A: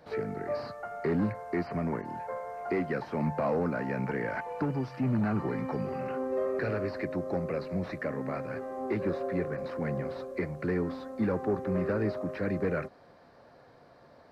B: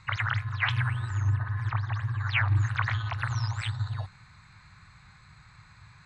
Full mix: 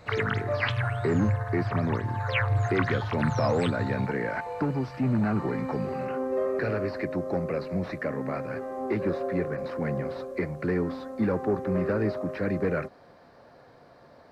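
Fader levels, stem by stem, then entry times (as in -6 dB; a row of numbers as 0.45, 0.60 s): +3.0, -1.0 dB; 0.00, 0.00 s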